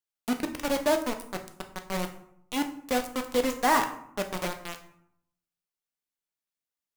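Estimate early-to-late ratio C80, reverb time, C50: 14.5 dB, 0.70 s, 11.5 dB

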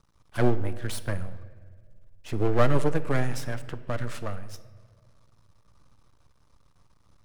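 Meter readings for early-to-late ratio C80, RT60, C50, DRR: 15.5 dB, 1.7 s, 14.5 dB, 12.0 dB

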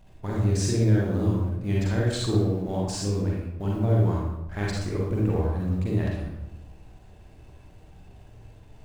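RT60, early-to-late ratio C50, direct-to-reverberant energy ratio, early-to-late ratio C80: 0.95 s, −1.0 dB, −4.5 dB, 3.0 dB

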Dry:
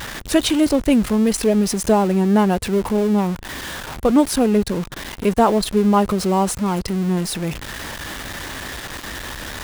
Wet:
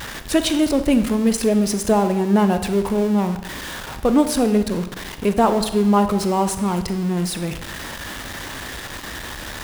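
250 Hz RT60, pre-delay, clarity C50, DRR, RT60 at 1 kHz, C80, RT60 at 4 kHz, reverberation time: 0.95 s, 29 ms, 10.5 dB, 9.0 dB, 1.0 s, 13.0 dB, 0.80 s, 1.0 s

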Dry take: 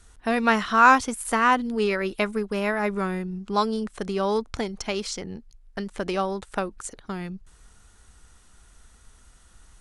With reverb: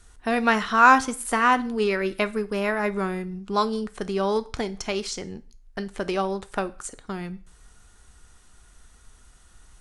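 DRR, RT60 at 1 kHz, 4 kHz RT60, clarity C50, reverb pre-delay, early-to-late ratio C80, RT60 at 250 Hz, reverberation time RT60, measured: 11.5 dB, 0.40 s, 0.40 s, 19.0 dB, 3 ms, 24.0 dB, 0.40 s, 0.40 s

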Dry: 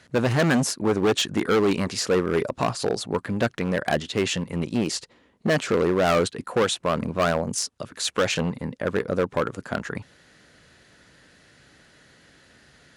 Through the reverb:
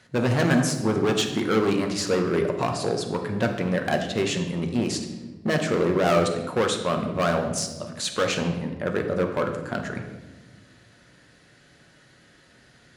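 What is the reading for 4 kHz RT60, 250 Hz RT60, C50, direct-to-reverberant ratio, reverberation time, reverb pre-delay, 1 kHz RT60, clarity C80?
0.80 s, 2.0 s, 7.0 dB, 3.5 dB, 1.2 s, 5 ms, 1.0 s, 9.0 dB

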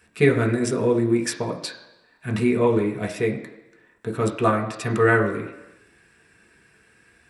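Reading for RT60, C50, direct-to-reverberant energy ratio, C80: 1.0 s, 10.0 dB, 0.5 dB, 12.0 dB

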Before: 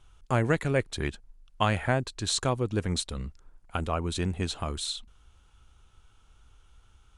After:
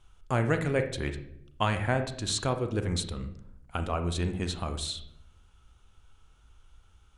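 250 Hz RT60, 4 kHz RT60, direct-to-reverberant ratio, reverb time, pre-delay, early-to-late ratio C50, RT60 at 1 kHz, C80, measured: 1.0 s, 0.50 s, 7.0 dB, 0.75 s, 34 ms, 10.0 dB, 0.55 s, 13.5 dB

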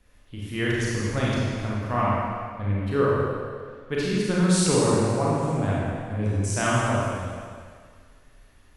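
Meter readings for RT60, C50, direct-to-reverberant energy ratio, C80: 1.9 s, −3.5 dB, −6.5 dB, −1.0 dB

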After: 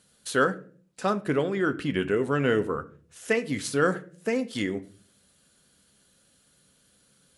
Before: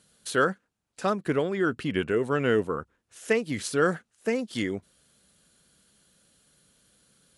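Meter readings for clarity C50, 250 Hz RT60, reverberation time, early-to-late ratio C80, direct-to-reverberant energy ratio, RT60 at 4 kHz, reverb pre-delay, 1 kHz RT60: 17.5 dB, 0.70 s, 0.45 s, 22.0 dB, 9.0 dB, 0.30 s, 4 ms, 0.35 s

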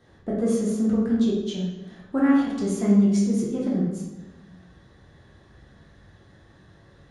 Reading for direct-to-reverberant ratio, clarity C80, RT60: −6.5 dB, 3.5 dB, 1.1 s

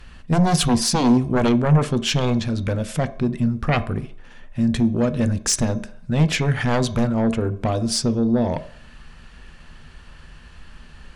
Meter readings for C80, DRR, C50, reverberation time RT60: 20.0 dB, 11.0 dB, 16.5 dB, 0.60 s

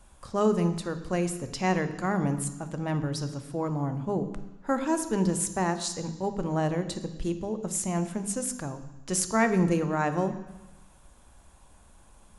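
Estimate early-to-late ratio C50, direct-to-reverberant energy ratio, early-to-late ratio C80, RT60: 11.0 dB, 9.5 dB, 13.0 dB, 1.1 s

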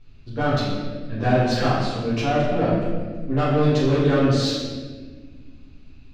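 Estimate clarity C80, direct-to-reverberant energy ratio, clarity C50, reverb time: 1.5 dB, −11.0 dB, −0.5 dB, 1.5 s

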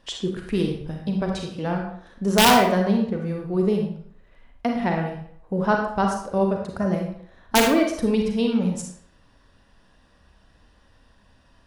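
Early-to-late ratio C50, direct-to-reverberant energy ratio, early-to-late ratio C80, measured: 3.5 dB, 1.0 dB, 7.5 dB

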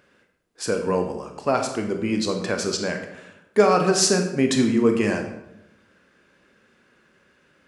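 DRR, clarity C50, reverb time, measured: 4.0 dB, 7.0 dB, 0.85 s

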